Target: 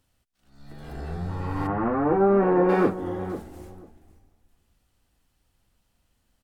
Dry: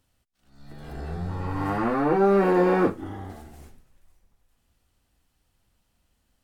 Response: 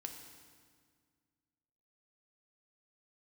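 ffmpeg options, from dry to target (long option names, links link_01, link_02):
-filter_complex "[0:a]asplit=3[link_01][link_02][link_03];[link_01]afade=type=out:start_time=1.66:duration=0.02[link_04];[link_02]lowpass=1500,afade=type=in:start_time=1.66:duration=0.02,afade=type=out:start_time=2.68:duration=0.02[link_05];[link_03]afade=type=in:start_time=2.68:duration=0.02[link_06];[link_04][link_05][link_06]amix=inputs=3:normalize=0,asplit=2[link_07][link_08];[link_08]adelay=494,lowpass=frequency=900:poles=1,volume=-11dB,asplit=2[link_09][link_10];[link_10]adelay=494,lowpass=frequency=900:poles=1,volume=0.18[link_11];[link_07][link_09][link_11]amix=inputs=3:normalize=0"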